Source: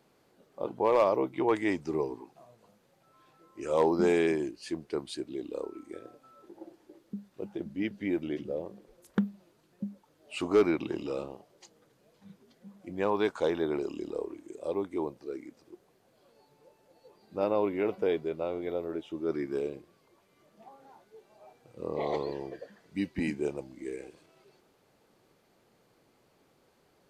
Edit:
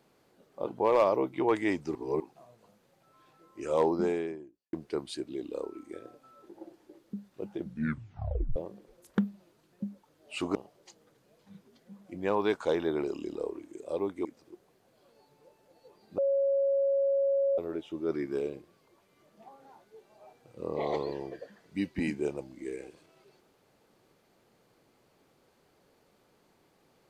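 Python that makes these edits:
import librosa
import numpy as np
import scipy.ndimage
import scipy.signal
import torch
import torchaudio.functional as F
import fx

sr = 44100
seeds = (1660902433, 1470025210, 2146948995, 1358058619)

y = fx.studio_fade_out(x, sr, start_s=3.61, length_s=1.12)
y = fx.edit(y, sr, fx.reverse_span(start_s=1.95, length_s=0.25),
    fx.tape_stop(start_s=7.62, length_s=0.94),
    fx.cut(start_s=10.55, length_s=0.75),
    fx.cut(start_s=15.0, length_s=0.45),
    fx.bleep(start_s=17.38, length_s=1.4, hz=552.0, db=-23.5), tone=tone)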